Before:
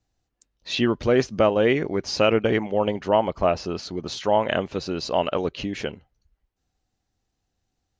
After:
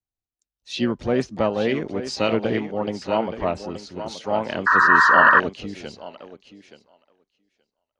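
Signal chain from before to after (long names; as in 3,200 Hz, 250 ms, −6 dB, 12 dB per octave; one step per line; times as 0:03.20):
dynamic equaliser 230 Hz, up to +5 dB, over −37 dBFS, Q 1.7
on a send: feedback echo with a high-pass in the loop 875 ms, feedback 18%, high-pass 230 Hz, level −7.5 dB
on the sum: pitch-shifted copies added +7 semitones −13 dB
sound drawn into the spectrogram noise, 0:04.66–0:05.40, 930–1,900 Hz −12 dBFS
multiband upward and downward expander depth 40%
level −4 dB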